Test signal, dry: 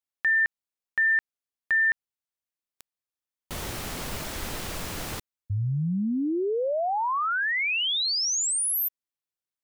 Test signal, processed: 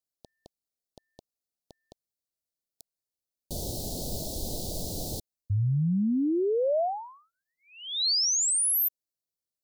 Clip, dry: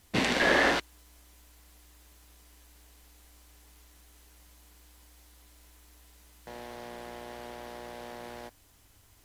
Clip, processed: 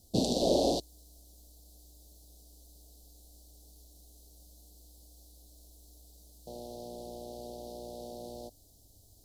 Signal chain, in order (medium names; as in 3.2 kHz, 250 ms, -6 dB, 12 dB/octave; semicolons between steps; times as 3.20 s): elliptic band-stop 680–4100 Hz, stop band 60 dB; trim +1.5 dB